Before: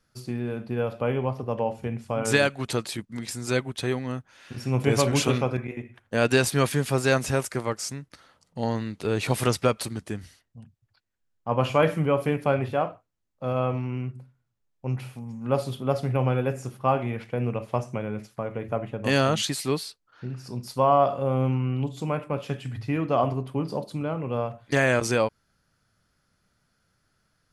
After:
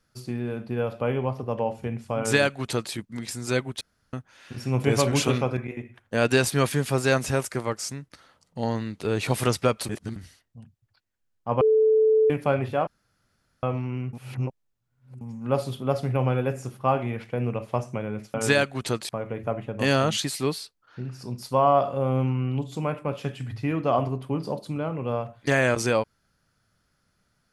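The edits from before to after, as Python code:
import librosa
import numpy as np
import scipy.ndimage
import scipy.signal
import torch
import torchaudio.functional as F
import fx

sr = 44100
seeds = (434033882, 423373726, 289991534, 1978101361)

y = fx.edit(x, sr, fx.duplicate(start_s=2.18, length_s=0.75, to_s=18.34),
    fx.room_tone_fill(start_s=3.81, length_s=0.32),
    fx.reverse_span(start_s=9.89, length_s=0.27),
    fx.bleep(start_s=11.61, length_s=0.69, hz=437.0, db=-15.5),
    fx.room_tone_fill(start_s=12.87, length_s=0.76),
    fx.reverse_span(start_s=14.13, length_s=1.08), tone=tone)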